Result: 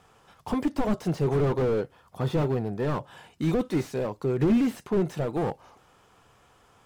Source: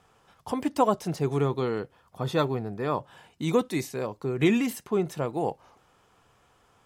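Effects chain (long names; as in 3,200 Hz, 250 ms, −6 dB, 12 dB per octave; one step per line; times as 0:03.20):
0:01.28–0:01.81: parametric band 890 Hz +8.5 dB 2.5 octaves
slew-rate limiting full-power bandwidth 22 Hz
level +3.5 dB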